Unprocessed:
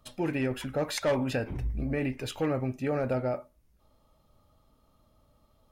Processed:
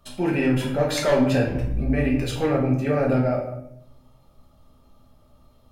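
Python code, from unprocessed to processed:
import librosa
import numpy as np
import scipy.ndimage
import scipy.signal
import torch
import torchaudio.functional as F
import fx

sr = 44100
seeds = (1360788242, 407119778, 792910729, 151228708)

y = fx.room_shoebox(x, sr, seeds[0], volume_m3=180.0, walls='mixed', distance_m=1.2)
y = F.gain(torch.from_numpy(y), 3.0).numpy()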